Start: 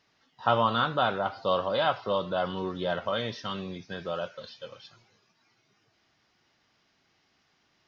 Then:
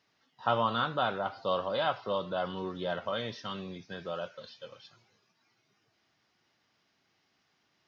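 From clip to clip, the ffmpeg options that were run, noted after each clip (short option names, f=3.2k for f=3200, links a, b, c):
-af "highpass=81,volume=-4dB"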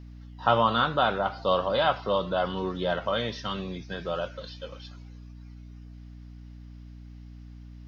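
-af "aeval=exprs='val(0)+0.00355*(sin(2*PI*60*n/s)+sin(2*PI*2*60*n/s)/2+sin(2*PI*3*60*n/s)/3+sin(2*PI*4*60*n/s)/4+sin(2*PI*5*60*n/s)/5)':c=same,volume=6dB"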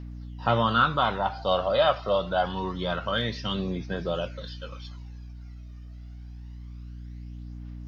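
-af "aphaser=in_gain=1:out_gain=1:delay=1.7:decay=0.49:speed=0.26:type=triangular"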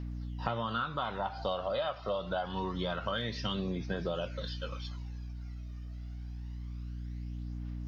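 -af "acompressor=threshold=-30dB:ratio=10"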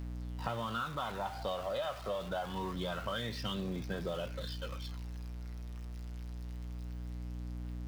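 -af "aeval=exprs='val(0)+0.5*0.00944*sgn(val(0))':c=same,volume=-4.5dB"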